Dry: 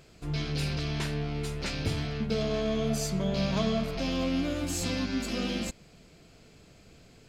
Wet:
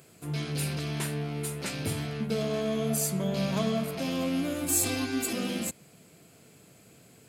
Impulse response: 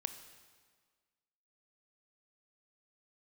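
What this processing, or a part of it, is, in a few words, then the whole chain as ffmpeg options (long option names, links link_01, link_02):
budget condenser microphone: -filter_complex "[0:a]asettb=1/sr,asplit=3[link_01][link_02][link_03];[link_01]atrim=end=4.684[link_04];[link_02]atrim=start=4.68:end=5.33,asetpts=PTS-STARTPTS,afade=type=in:duration=0.004:curve=qsin,afade=type=out:start_time=0.646:duration=0.004:curve=qsin,aecho=1:1:2.6:0.97,atrim=end_sample=28665[link_05];[link_03]atrim=start=5.326[link_06];[link_04][link_05]acrossfade=duration=0.004:curve1=hsin:curve2=qsin[link_07];[link_07][link_06]acrossfade=duration=0.004:curve1=qsin:curve2=hsin,highpass=frequency=100:width=0.5412,highpass=frequency=100:width=1.3066,highshelf=frequency=7400:width_type=q:width=1.5:gain=12"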